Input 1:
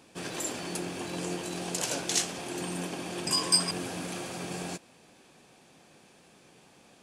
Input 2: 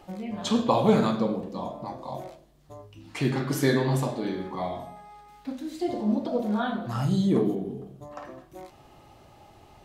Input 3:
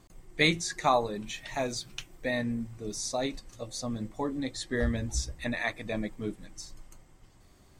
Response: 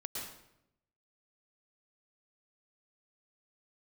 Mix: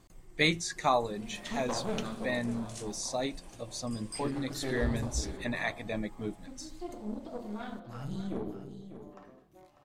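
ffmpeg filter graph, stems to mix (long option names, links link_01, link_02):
-filter_complex "[0:a]equalizer=frequency=9100:width_type=o:width=0.34:gain=7,adelay=600,volume=-19dB[link_01];[1:a]aeval=exprs='(tanh(8.91*val(0)+0.8)-tanh(0.8))/8.91':channel_layout=same,adelay=1000,volume=-9dB,asplit=2[link_02][link_03];[link_03]volume=-11.5dB[link_04];[2:a]volume=-2dB,asplit=2[link_05][link_06];[link_06]apad=whole_len=336423[link_07];[link_01][link_07]sidechaincompress=threshold=-40dB:ratio=3:attack=16:release=284[link_08];[link_04]aecho=0:1:596:1[link_09];[link_08][link_02][link_05][link_09]amix=inputs=4:normalize=0"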